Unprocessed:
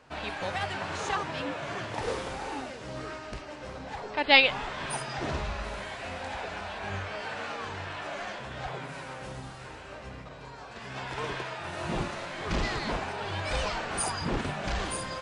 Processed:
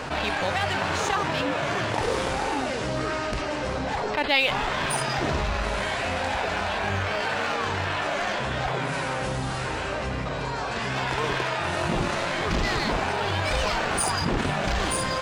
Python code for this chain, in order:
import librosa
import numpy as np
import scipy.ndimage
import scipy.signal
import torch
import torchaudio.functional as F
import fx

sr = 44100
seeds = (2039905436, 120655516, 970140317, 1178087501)

p1 = np.sign(x) * np.maximum(np.abs(x) - 10.0 ** (-32.0 / 20.0), 0.0)
p2 = x + (p1 * librosa.db_to_amplitude(-3.0))
p3 = fx.env_flatten(p2, sr, amount_pct=70)
y = p3 * librosa.db_to_amplitude(-8.5)